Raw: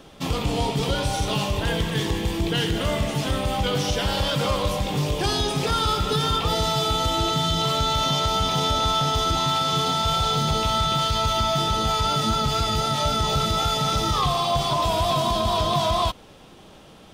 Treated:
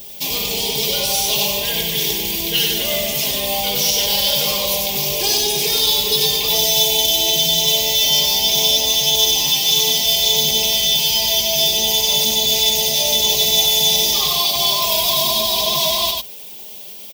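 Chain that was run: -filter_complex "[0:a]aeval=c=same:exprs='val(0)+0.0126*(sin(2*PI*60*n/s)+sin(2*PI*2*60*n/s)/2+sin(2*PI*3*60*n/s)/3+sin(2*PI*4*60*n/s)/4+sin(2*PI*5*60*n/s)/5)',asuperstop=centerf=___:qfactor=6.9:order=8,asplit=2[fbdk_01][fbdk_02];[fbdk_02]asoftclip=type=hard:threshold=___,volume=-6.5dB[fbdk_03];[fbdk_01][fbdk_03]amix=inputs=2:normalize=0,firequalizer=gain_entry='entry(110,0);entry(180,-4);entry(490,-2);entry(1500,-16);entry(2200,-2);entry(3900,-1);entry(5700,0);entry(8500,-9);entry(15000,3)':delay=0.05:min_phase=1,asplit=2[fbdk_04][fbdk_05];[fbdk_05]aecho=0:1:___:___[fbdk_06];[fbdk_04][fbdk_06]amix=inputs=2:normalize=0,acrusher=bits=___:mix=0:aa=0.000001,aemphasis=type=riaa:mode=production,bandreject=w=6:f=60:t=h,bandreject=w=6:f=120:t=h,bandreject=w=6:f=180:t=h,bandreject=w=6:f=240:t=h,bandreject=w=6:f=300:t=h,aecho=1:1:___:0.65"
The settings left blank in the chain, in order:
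1300, -19.5dB, 96, 0.668, 8, 4.9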